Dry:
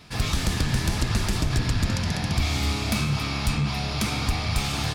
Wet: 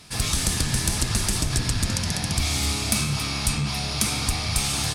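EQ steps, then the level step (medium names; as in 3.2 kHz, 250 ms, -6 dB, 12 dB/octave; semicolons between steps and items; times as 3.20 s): peaking EQ 9.1 kHz +14.5 dB 1.4 oct; band-stop 7.2 kHz, Q 18; -1.5 dB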